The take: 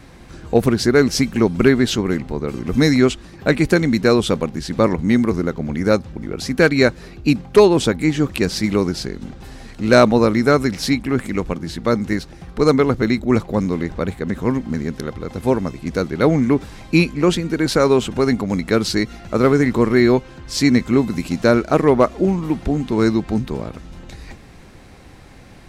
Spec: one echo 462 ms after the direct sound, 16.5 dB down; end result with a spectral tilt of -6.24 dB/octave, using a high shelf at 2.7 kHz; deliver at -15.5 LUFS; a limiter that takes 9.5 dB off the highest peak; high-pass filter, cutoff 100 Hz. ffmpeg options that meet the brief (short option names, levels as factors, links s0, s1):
-af "highpass=100,highshelf=f=2700:g=-7.5,alimiter=limit=0.335:level=0:latency=1,aecho=1:1:462:0.15,volume=2"